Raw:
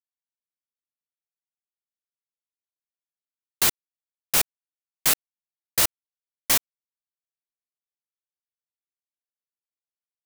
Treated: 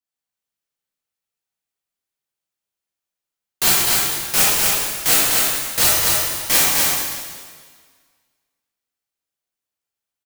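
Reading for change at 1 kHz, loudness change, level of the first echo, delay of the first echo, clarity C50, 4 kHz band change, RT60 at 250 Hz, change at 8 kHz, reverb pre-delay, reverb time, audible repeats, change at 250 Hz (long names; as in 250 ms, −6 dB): +10.0 dB, +7.5 dB, −3.0 dB, 252 ms, −5.0 dB, +9.5 dB, 1.7 s, +9.5 dB, 8 ms, 1.7 s, 1, +9.5 dB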